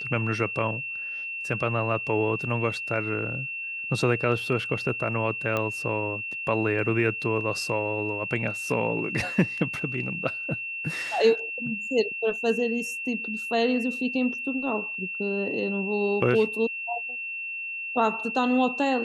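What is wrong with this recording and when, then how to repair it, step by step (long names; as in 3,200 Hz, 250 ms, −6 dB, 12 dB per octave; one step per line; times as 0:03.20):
whistle 2,700 Hz −31 dBFS
0:05.57: click −14 dBFS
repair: click removal
notch filter 2,700 Hz, Q 30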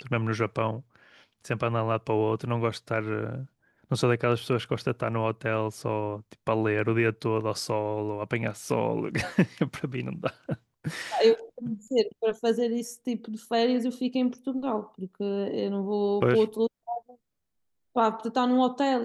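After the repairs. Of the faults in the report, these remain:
none of them is left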